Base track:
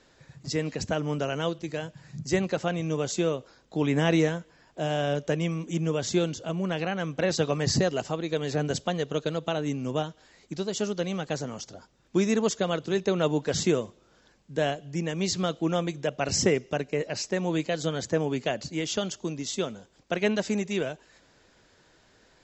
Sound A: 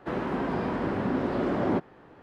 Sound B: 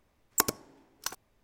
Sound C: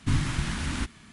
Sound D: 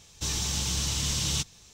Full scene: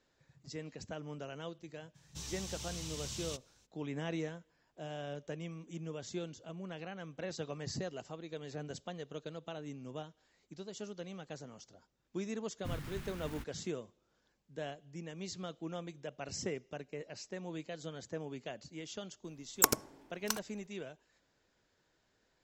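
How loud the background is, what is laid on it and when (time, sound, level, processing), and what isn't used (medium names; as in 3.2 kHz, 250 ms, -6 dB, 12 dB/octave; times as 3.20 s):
base track -15.5 dB
1.94 s: add D -15 dB, fades 0.02 s
12.58 s: add C -16 dB + tracing distortion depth 0.3 ms
19.24 s: add B -0.5 dB
not used: A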